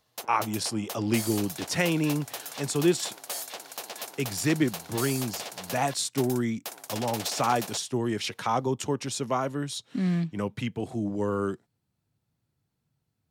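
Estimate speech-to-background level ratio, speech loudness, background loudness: 8.0 dB, -29.0 LUFS, -37.0 LUFS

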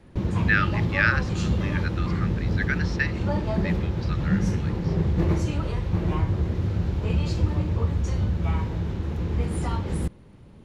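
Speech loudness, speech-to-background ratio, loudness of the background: -28.5 LUFS, -2.5 dB, -26.0 LUFS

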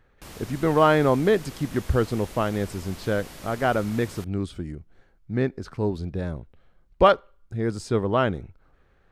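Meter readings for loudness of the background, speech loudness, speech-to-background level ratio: -42.5 LUFS, -24.5 LUFS, 18.0 dB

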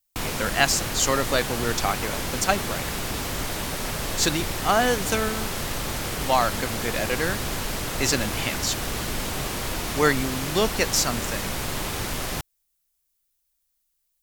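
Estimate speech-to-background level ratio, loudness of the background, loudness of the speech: 3.5 dB, -28.5 LUFS, -25.0 LUFS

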